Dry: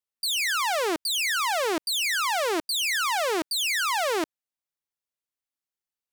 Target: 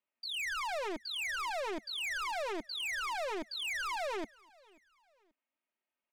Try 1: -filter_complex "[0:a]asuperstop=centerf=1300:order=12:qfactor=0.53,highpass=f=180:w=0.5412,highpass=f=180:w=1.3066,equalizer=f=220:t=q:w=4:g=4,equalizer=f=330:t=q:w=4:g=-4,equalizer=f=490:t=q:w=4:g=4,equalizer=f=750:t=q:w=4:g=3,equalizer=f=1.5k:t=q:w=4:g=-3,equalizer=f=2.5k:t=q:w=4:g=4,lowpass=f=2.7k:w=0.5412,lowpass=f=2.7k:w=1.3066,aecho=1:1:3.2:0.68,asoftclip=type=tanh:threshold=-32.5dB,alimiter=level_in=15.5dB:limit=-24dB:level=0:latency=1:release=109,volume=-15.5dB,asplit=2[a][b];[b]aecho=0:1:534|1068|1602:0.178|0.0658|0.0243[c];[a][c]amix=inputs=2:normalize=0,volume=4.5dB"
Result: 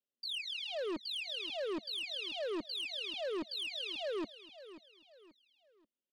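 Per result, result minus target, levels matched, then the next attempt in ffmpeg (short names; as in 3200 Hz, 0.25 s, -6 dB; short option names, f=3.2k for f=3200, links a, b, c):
1000 Hz band -10.5 dB; echo-to-direct +11 dB
-filter_complex "[0:a]highpass=f=180:w=0.5412,highpass=f=180:w=1.3066,equalizer=f=220:t=q:w=4:g=4,equalizer=f=330:t=q:w=4:g=-4,equalizer=f=490:t=q:w=4:g=4,equalizer=f=750:t=q:w=4:g=3,equalizer=f=1.5k:t=q:w=4:g=-3,equalizer=f=2.5k:t=q:w=4:g=4,lowpass=f=2.7k:w=0.5412,lowpass=f=2.7k:w=1.3066,aecho=1:1:3.2:0.68,asoftclip=type=tanh:threshold=-32.5dB,alimiter=level_in=15.5dB:limit=-24dB:level=0:latency=1:release=109,volume=-15.5dB,asplit=2[a][b];[b]aecho=0:1:534|1068|1602:0.178|0.0658|0.0243[c];[a][c]amix=inputs=2:normalize=0,volume=4.5dB"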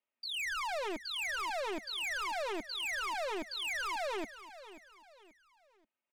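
echo-to-direct +11 dB
-filter_complex "[0:a]highpass=f=180:w=0.5412,highpass=f=180:w=1.3066,equalizer=f=220:t=q:w=4:g=4,equalizer=f=330:t=q:w=4:g=-4,equalizer=f=490:t=q:w=4:g=4,equalizer=f=750:t=q:w=4:g=3,equalizer=f=1.5k:t=q:w=4:g=-3,equalizer=f=2.5k:t=q:w=4:g=4,lowpass=f=2.7k:w=0.5412,lowpass=f=2.7k:w=1.3066,aecho=1:1:3.2:0.68,asoftclip=type=tanh:threshold=-32.5dB,alimiter=level_in=15.5dB:limit=-24dB:level=0:latency=1:release=109,volume=-15.5dB,asplit=2[a][b];[b]aecho=0:1:534|1068:0.0501|0.0185[c];[a][c]amix=inputs=2:normalize=0,volume=4.5dB"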